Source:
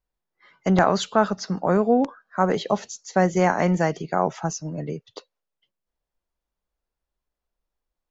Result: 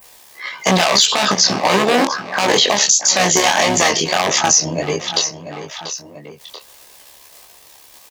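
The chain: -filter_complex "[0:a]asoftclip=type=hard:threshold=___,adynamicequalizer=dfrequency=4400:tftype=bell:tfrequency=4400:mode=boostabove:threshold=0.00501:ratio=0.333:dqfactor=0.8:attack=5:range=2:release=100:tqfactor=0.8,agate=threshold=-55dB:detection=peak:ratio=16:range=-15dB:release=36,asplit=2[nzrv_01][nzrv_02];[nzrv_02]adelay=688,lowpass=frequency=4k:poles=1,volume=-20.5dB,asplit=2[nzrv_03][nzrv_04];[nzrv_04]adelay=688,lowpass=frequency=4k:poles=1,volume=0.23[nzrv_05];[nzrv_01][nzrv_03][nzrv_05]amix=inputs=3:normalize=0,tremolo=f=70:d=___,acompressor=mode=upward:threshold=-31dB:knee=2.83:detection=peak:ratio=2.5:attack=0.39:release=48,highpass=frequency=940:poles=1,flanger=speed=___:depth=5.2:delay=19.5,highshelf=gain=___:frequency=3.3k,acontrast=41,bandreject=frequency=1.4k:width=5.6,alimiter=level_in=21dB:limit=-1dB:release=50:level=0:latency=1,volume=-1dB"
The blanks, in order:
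-20.5dB, 0.75, 1.6, 7.5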